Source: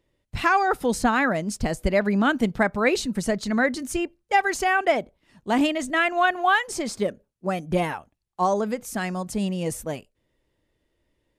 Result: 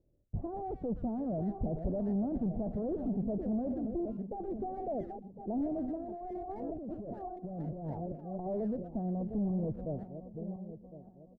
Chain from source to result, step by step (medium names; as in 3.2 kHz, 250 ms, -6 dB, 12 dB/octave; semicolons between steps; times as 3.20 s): backward echo that repeats 528 ms, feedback 54%, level -13 dB; de-esser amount 90%; valve stage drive 29 dB, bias 0.35; Chebyshev low-pass 700 Hz, order 4; speakerphone echo 120 ms, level -17 dB; 5.97–8.46 s: compressor with a negative ratio -38 dBFS, ratio -1; bass shelf 220 Hz +8 dB; trim -4 dB